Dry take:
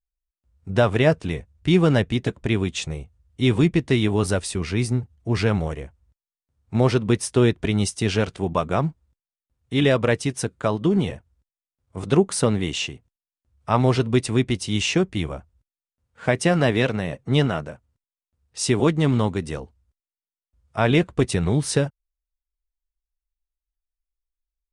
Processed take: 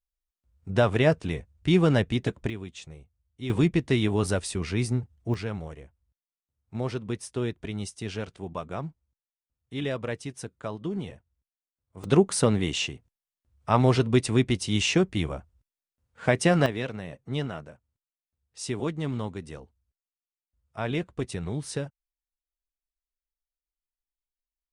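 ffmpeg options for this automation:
ffmpeg -i in.wav -af "asetnsamples=nb_out_samples=441:pad=0,asendcmd='2.5 volume volume -15dB;3.5 volume volume -4dB;5.34 volume volume -12dB;12.04 volume volume -2dB;16.66 volume volume -11dB',volume=-3.5dB" out.wav

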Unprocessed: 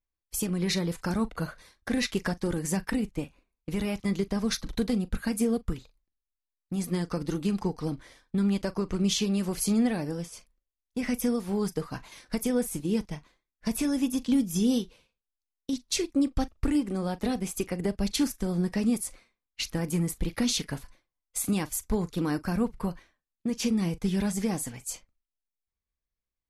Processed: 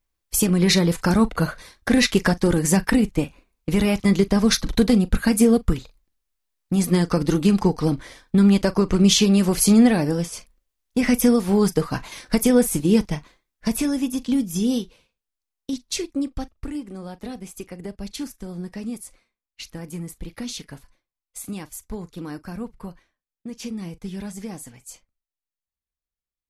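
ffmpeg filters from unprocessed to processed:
ffmpeg -i in.wav -af "volume=10.5dB,afade=type=out:start_time=13.13:duration=0.89:silence=0.421697,afade=type=out:start_time=15.7:duration=0.96:silence=0.398107" out.wav

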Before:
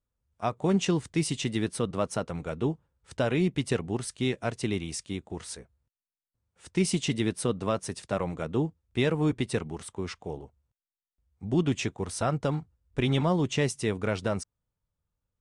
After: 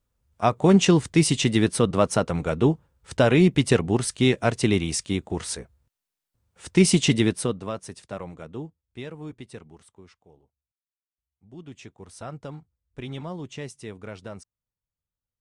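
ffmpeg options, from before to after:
ffmpeg -i in.wav -af "volume=18dB,afade=type=out:start_time=7.12:duration=0.5:silence=0.266073,afade=type=out:start_time=7.62:duration=1.48:silence=0.354813,afade=type=out:start_time=9.75:duration=0.45:silence=0.446684,afade=type=in:start_time=11.52:duration=0.73:silence=0.334965" out.wav

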